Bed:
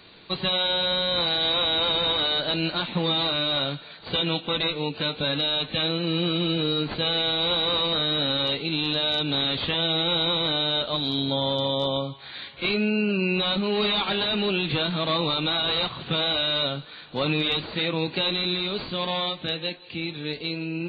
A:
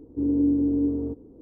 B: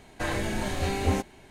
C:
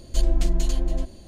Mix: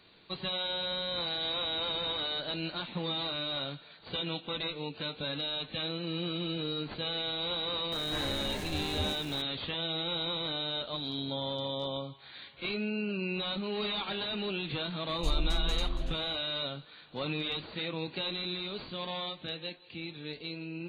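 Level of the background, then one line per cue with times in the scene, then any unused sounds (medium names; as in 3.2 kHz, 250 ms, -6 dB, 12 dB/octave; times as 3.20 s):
bed -10 dB
7.92 s: add B -11 dB + jump at every zero crossing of -30 dBFS
15.09 s: add C -10 dB + band-stop 7 kHz, Q 21
not used: A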